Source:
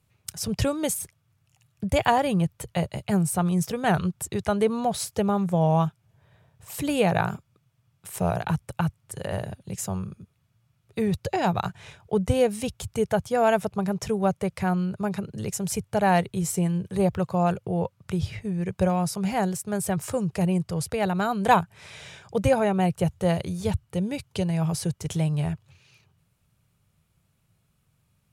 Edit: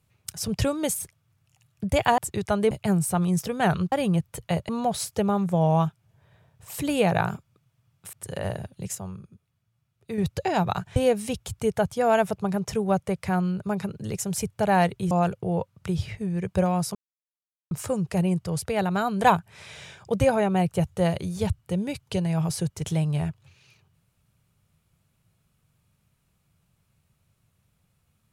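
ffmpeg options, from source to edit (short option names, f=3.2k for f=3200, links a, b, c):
-filter_complex "[0:a]asplit=12[a][b][c][d][e][f][g][h][i][j][k][l];[a]atrim=end=2.182[m];[b]atrim=start=4.158:end=4.692[n];[c]atrim=start=2.948:end=4.162[o];[d]atrim=start=2.178:end=2.952[p];[e]atrim=start=4.688:end=8.132[q];[f]atrim=start=9.008:end=9.832[r];[g]atrim=start=9.828:end=11.062,asetpts=PTS-STARTPTS,volume=-6.5dB[s];[h]atrim=start=11.058:end=11.842[t];[i]atrim=start=12.298:end=16.452[u];[j]atrim=start=17.348:end=19.19,asetpts=PTS-STARTPTS,afade=t=out:st=1.838:d=0.004:c=hsin[v];[k]atrim=start=19.19:end=19.95,asetpts=PTS-STARTPTS,volume=0[w];[l]atrim=start=19.95,asetpts=PTS-STARTPTS,afade=t=in:d=0.004:c=hsin[x];[m][n]acrossfade=d=0.004:c1=hsin:c2=hsin[y];[y][o]acrossfade=d=0.004:c1=hsin:c2=hsin[z];[z][p]acrossfade=d=0.004:c1=hsin:c2=hsin[aa];[aa][q]acrossfade=d=0.004:c1=hsin:c2=hsin[ab];[ab][r]acrossfade=d=0.004:c1=hsin:c2=hsin[ac];[ac][s]acrossfade=d=0.004:c1=hsin:c2=hsin[ad];[ad][t]acrossfade=d=0.004:c1=hsin:c2=hsin[ae];[ae][u]acrossfade=d=0.004:c1=hsin:c2=hsin[af];[v][w][x]concat=n=3:v=0:a=1[ag];[af][ag]acrossfade=d=0.004:c1=hsin:c2=hsin"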